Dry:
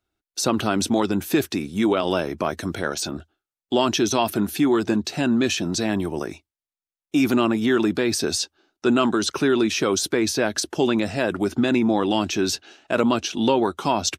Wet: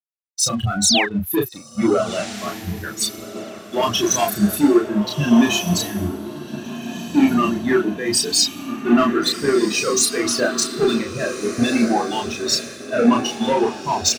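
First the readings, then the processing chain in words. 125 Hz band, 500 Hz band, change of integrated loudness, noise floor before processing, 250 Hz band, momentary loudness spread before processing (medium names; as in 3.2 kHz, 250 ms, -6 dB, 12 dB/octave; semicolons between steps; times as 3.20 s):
+3.0 dB, +1.5 dB, +3.0 dB, under -85 dBFS, +2.5 dB, 7 LU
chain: expander on every frequency bin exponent 3; high-pass 120 Hz 6 dB/octave; de-hum 369.5 Hz, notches 10; waveshaping leveller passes 2; peak limiter -20 dBFS, peak gain reduction 6.5 dB; painted sound fall, 0.83–1.05 s, 1.5–8.1 kHz -28 dBFS; doubling 34 ms -3 dB; echo that smears into a reverb 1459 ms, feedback 56%, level -6 dB; three bands expanded up and down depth 100%; trim +5.5 dB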